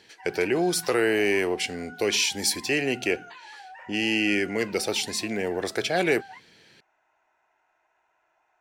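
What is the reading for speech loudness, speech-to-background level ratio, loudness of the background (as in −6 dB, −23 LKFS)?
−25.5 LKFS, 19.5 dB, −45.0 LKFS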